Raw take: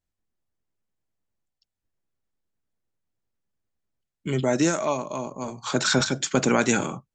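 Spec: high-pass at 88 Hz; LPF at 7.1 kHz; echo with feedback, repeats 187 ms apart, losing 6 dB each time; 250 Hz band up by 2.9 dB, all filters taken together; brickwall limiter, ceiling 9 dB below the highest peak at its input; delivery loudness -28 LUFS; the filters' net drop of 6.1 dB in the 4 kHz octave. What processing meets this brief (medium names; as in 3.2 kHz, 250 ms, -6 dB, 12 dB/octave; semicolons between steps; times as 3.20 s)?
high-pass 88 Hz; low-pass 7.1 kHz; peaking EQ 250 Hz +3.5 dB; peaking EQ 4 kHz -7 dB; peak limiter -17 dBFS; feedback delay 187 ms, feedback 50%, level -6 dB; trim -1 dB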